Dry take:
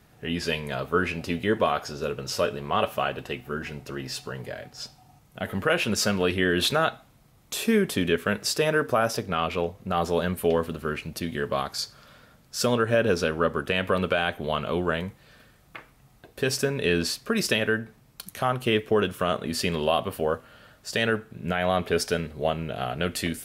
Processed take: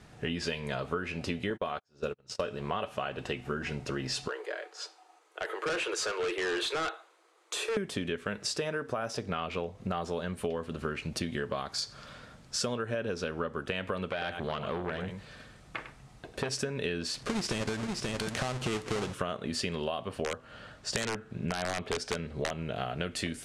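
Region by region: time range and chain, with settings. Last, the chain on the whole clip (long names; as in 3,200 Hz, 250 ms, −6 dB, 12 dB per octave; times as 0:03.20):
0:01.50–0:02.44: noise gate −29 dBFS, range −43 dB + upward compression, threshold −35 dBFS
0:04.28–0:07.77: Chebyshev high-pass with heavy ripple 320 Hz, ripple 6 dB + notch filter 5,400 Hz + hard clipping −29.5 dBFS
0:14.10–0:16.52: single-tap delay 101 ms −11.5 dB + saturating transformer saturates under 1,200 Hz
0:17.14–0:19.14: each half-wave held at its own peak + downward compressor 2 to 1, threshold −32 dBFS + single-tap delay 532 ms −8.5 dB
0:20.09–0:22.51: high-shelf EQ 8,300 Hz −7 dB + wrap-around overflow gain 15 dB
whole clip: low-pass filter 9,000 Hz 24 dB per octave; downward compressor 12 to 1, threshold −33 dBFS; level +3.5 dB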